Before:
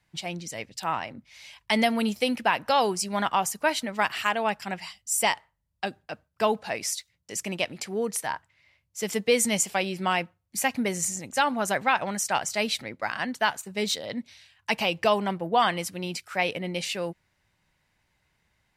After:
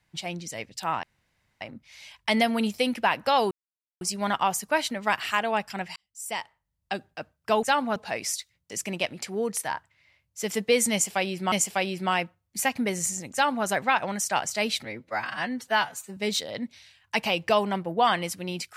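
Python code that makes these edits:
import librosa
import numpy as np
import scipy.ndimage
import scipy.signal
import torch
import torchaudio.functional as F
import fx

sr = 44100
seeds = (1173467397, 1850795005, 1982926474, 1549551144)

y = fx.edit(x, sr, fx.insert_room_tone(at_s=1.03, length_s=0.58),
    fx.insert_silence(at_s=2.93, length_s=0.5),
    fx.fade_in_span(start_s=4.88, length_s=1.01),
    fx.repeat(start_s=9.51, length_s=0.6, count=2),
    fx.duplicate(start_s=11.32, length_s=0.33, to_s=6.55),
    fx.stretch_span(start_s=12.84, length_s=0.88, factor=1.5), tone=tone)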